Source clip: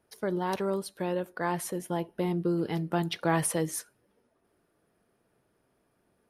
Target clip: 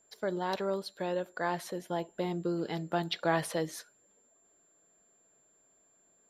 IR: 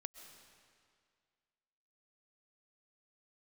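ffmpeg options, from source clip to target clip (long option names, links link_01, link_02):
-af "equalizer=frequency=100:width_type=o:width=0.67:gain=-9,equalizer=frequency=630:width_type=o:width=0.67:gain=6,equalizer=frequency=1600:width_type=o:width=0.67:gain=4,equalizer=frequency=4000:width_type=o:width=0.67:gain=9,equalizer=frequency=10000:width_type=o:width=0.67:gain=-9,aeval=exprs='val(0)+0.000891*sin(2*PI*7300*n/s)':channel_layout=same,volume=-5dB"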